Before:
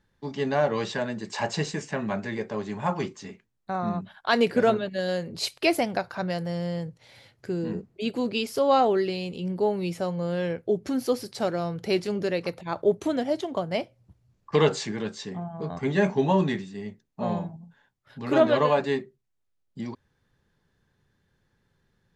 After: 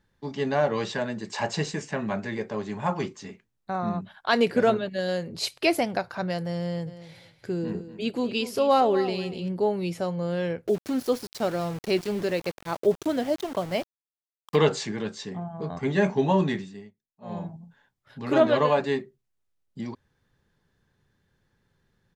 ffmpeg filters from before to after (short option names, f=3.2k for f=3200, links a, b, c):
-filter_complex "[0:a]asplit=3[a][b][c];[a]afade=t=out:st=6.86:d=0.02[d];[b]aecho=1:1:240|480:0.224|0.0358,afade=t=in:st=6.86:d=0.02,afade=t=out:st=9.48:d=0.02[e];[c]afade=t=in:st=9.48:d=0.02[f];[d][e][f]amix=inputs=3:normalize=0,asettb=1/sr,asplit=3[g][h][i];[g]atrim=end=10.674[j];[h]atrim=start=10.67:end=14.56,asetpts=PTS-STARTPTS,afade=t=in:d=0.004:c=qsin,afade=t=out:st=3.886:d=0.004:c=qsin,aeval=exprs='val(0)*gte(abs(val(0)),0.015)':c=same[k];[i]atrim=start=14.556[l];[j][k]acrossfade=d=0.004:c1=hsin:c2=qsin[m];[m][l]acrossfade=d=0.004:c1=qsin:c2=hsin,asplit=3[n][o][p];[n]atrim=end=16.92,asetpts=PTS-STARTPTS,afade=t=out:st=16.65:d=0.27:silence=0.0668344[q];[o]atrim=start=16.92:end=17.21,asetpts=PTS-STARTPTS,volume=-23.5dB[r];[p]atrim=start=17.21,asetpts=PTS-STARTPTS,afade=t=in:d=0.27:silence=0.0668344[s];[q][r][s]concat=n=3:v=0:a=1"